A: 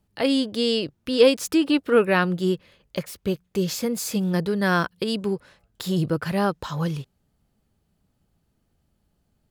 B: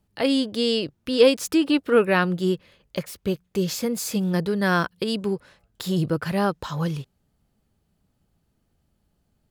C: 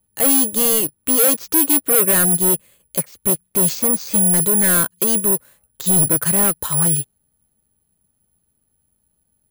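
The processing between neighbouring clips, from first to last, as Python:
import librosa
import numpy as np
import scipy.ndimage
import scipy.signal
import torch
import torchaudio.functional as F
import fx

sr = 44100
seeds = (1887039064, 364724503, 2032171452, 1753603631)

y1 = x
y2 = np.clip(10.0 ** (25.0 / 20.0) * y1, -1.0, 1.0) / 10.0 ** (25.0 / 20.0)
y2 = (np.kron(scipy.signal.resample_poly(y2, 1, 4), np.eye(4)[0]) * 4)[:len(y2)]
y2 = fx.upward_expand(y2, sr, threshold_db=-41.0, expansion=1.5)
y2 = F.gain(torch.from_numpy(y2), 7.0).numpy()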